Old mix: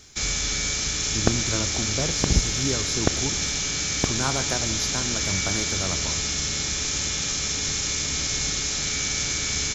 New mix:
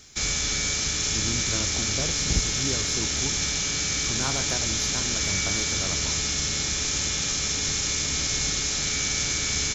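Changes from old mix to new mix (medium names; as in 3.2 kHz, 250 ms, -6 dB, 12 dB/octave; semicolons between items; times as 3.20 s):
speech -4.5 dB; second sound: muted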